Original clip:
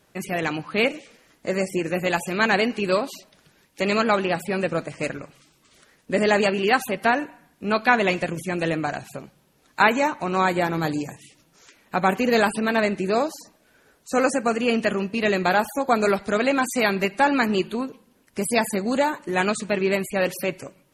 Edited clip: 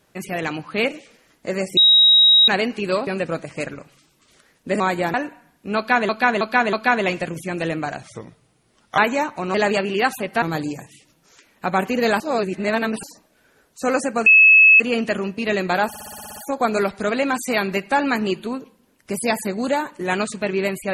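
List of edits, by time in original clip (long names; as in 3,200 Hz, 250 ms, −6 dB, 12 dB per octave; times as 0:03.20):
0:01.77–0:02.48: beep over 3,810 Hz −9 dBFS
0:03.07–0:04.50: remove
0:06.23–0:07.11: swap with 0:10.38–0:10.72
0:07.74–0:08.06: repeat, 4 plays
0:09.04–0:09.82: play speed 82%
0:12.50–0:13.33: reverse
0:14.56: insert tone 2,590 Hz −7 dBFS 0.54 s
0:15.64: stutter 0.06 s, 9 plays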